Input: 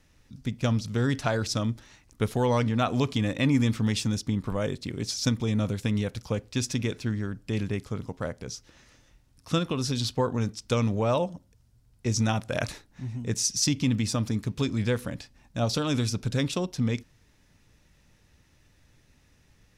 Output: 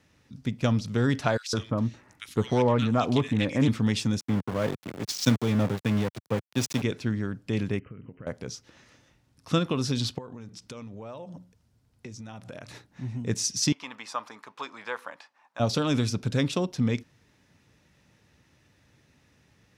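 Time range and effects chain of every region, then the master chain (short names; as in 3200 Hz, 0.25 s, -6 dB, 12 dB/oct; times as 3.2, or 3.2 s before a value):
1.37–3.68 bands offset in time highs, lows 0.16 s, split 1800 Hz + Doppler distortion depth 0.15 ms
4.2–6.82 low shelf 92 Hz +2.5 dB + sample gate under -30.5 dBFS + three-band expander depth 70%
7.79–8.27 compressor 16:1, threshold -38 dBFS + brick-wall FIR low-pass 3100 Hz + bell 860 Hz -13 dB 0.73 oct
10.18–12.87 notches 60/120/180 Hz + compressor 20:1, threshold -38 dBFS
13.72–15.6 resonant high-pass 980 Hz, resonance Q 2.4 + high shelf 2400 Hz -11 dB
whole clip: HPF 100 Hz; high shelf 5500 Hz -7 dB; gain +2 dB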